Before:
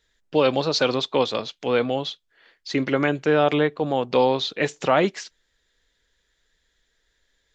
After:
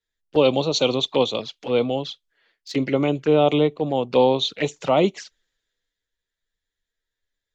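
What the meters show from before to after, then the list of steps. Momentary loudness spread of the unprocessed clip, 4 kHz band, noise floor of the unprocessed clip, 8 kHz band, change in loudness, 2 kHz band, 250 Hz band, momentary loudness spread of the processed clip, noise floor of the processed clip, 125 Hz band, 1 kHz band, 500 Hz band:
8 LU, +2.0 dB, -71 dBFS, no reading, +1.5 dB, -5.0 dB, +2.0 dB, 9 LU, -85 dBFS, +2.5 dB, -1.0 dB, +1.5 dB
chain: touch-sensitive flanger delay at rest 10.9 ms, full sweep at -20 dBFS; three bands expanded up and down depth 40%; trim +2.5 dB

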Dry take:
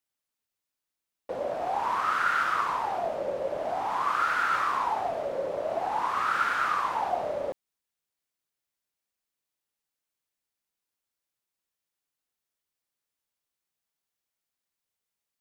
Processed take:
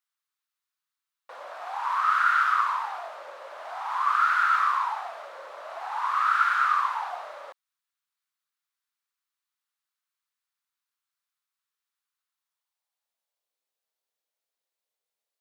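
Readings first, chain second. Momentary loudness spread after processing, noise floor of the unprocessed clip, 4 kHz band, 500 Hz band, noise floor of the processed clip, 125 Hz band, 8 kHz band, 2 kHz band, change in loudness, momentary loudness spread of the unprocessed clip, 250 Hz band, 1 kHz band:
20 LU, under -85 dBFS, 0.0 dB, -12.5 dB, under -85 dBFS, under -35 dB, no reading, +3.0 dB, +3.5 dB, 7 LU, under -25 dB, +2.5 dB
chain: peaking EQ 3.9 kHz +3.5 dB 0.54 oct; high-pass sweep 1.2 kHz -> 510 Hz, 12.25–13.55 s; trim -3 dB

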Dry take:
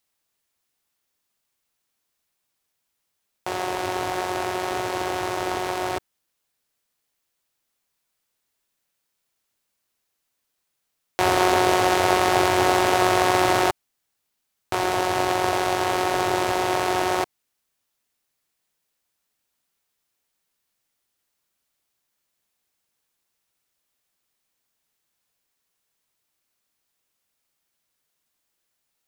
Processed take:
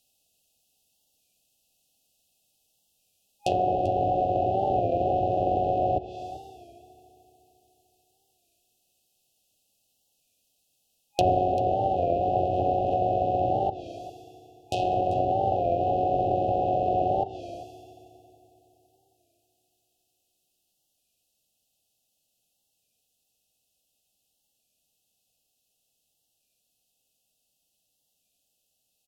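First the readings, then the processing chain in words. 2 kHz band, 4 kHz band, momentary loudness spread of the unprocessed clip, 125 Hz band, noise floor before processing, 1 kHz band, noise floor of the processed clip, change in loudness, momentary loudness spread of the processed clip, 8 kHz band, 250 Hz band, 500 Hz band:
-25.0 dB, -16.0 dB, 10 LU, +2.0 dB, -78 dBFS, -2.0 dB, -76 dBFS, -3.5 dB, 14 LU, under -20 dB, -5.0 dB, -1.5 dB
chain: FFT band-reject 820–2500 Hz; peaking EQ 360 Hz -7 dB 0.44 oct; gain riding 0.5 s; FDN reverb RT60 3.6 s, high-frequency decay 0.6×, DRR 14 dB; low-pass that closes with the level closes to 870 Hz, closed at -21.5 dBFS; on a send: delay 391 ms -16.5 dB; on the sum: warped record 33 1/3 rpm, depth 100 cents; trim +2 dB

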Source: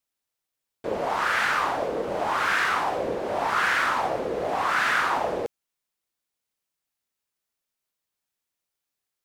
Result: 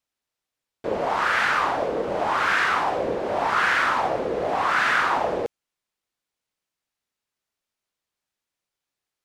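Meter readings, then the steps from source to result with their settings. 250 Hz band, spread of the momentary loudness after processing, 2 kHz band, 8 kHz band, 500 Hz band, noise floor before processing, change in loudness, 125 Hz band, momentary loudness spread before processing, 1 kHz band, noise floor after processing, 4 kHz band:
+2.5 dB, 7 LU, +2.0 dB, -1.5 dB, +2.5 dB, -85 dBFS, +2.0 dB, +2.5 dB, 7 LU, +2.5 dB, under -85 dBFS, +1.5 dB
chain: treble shelf 9.6 kHz -12 dB; trim +2.5 dB

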